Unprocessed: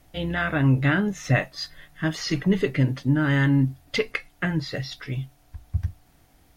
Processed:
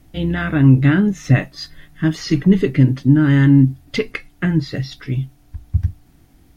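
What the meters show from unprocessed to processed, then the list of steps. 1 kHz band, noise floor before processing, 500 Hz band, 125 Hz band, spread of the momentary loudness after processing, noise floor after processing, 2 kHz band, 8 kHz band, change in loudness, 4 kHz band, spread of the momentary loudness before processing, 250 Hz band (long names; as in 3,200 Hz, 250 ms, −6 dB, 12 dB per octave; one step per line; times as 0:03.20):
+0.5 dB, −59 dBFS, +4.5 dB, +8.5 dB, 15 LU, −52 dBFS, +1.0 dB, can't be measured, +8.0 dB, +1.5 dB, 12 LU, +9.5 dB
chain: low shelf with overshoot 420 Hz +6.5 dB, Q 1.5
level +1.5 dB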